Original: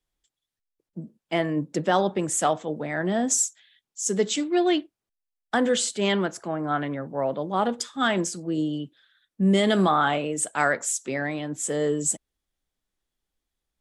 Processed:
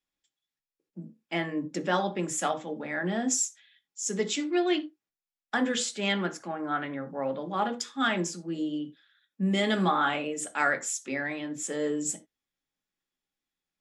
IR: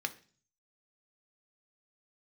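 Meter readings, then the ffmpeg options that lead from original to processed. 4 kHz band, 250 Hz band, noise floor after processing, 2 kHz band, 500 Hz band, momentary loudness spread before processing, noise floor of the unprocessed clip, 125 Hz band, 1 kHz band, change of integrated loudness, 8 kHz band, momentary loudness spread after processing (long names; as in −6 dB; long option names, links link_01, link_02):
−3.0 dB, −4.5 dB, below −85 dBFS, −1.5 dB, −6.5 dB, 9 LU, below −85 dBFS, −6.0 dB, −4.5 dB, −4.5 dB, −5.0 dB, 8 LU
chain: -filter_complex "[1:a]atrim=start_sample=2205,atrim=end_sample=4410[link_01];[0:a][link_01]afir=irnorm=-1:irlink=0,volume=-5dB"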